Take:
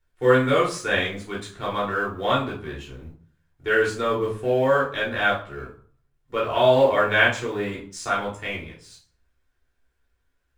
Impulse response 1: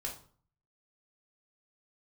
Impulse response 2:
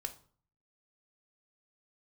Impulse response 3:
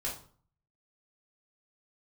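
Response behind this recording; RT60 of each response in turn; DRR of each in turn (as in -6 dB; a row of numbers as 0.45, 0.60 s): 3; 0.50, 0.50, 0.50 s; -1.5, 7.0, -5.5 dB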